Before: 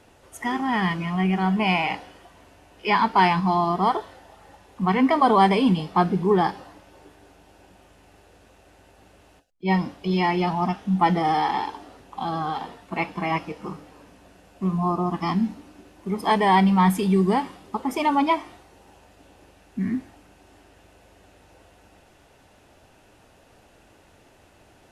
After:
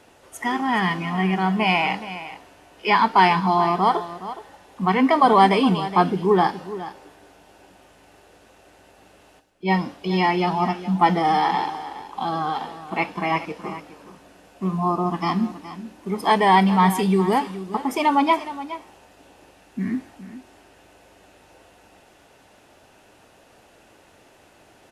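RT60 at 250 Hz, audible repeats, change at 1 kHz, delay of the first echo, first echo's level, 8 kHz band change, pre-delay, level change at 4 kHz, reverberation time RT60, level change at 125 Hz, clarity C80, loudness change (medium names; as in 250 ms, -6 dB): no reverb, 1, +3.0 dB, 418 ms, -14.0 dB, +3.0 dB, no reverb, +3.0 dB, no reverb, -0.5 dB, no reverb, +2.0 dB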